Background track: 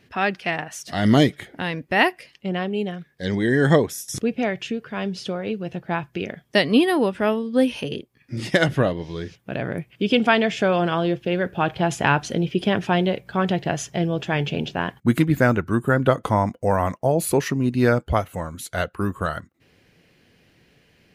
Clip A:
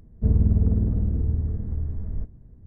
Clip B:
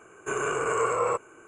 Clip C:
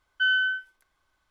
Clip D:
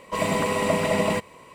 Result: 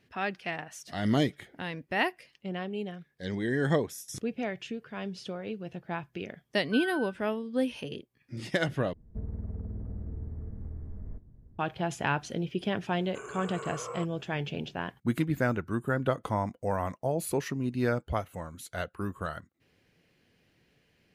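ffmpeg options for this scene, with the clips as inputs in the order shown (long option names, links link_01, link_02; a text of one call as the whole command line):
ffmpeg -i bed.wav -i cue0.wav -i cue1.wav -i cue2.wav -filter_complex "[0:a]volume=-10dB[link_01];[3:a]lowpass=1600[link_02];[1:a]acrossover=split=190|460[link_03][link_04][link_05];[link_03]acompressor=threshold=-30dB:ratio=4[link_06];[link_04]acompressor=threshold=-44dB:ratio=4[link_07];[link_05]acompressor=threshold=-48dB:ratio=4[link_08];[link_06][link_07][link_08]amix=inputs=3:normalize=0[link_09];[link_01]asplit=2[link_10][link_11];[link_10]atrim=end=8.934[link_12];[link_09]atrim=end=2.66,asetpts=PTS-STARTPTS,volume=-6.5dB[link_13];[link_11]atrim=start=11.586[link_14];[link_02]atrim=end=1.3,asetpts=PTS-STARTPTS,volume=-11dB,afade=type=in:duration=0.004:curve=hsin,afade=type=out:start_time=1.296:duration=0.004:curve=hsin,adelay=6520[link_15];[2:a]atrim=end=1.47,asetpts=PTS-STARTPTS,volume=-14dB,afade=type=in:duration=0.004:curve=hsin,afade=type=out:start_time=1.466:duration=0.004:curve=hsin,adelay=12880[link_16];[link_12][link_13]acrossfade=duration=0.004:curve1=hsin:curve2=hsin[link_17];[link_17][link_14]acrossfade=duration=0.004:curve1=hsin:curve2=hsin[link_18];[link_18][link_15][link_16]amix=inputs=3:normalize=0" out.wav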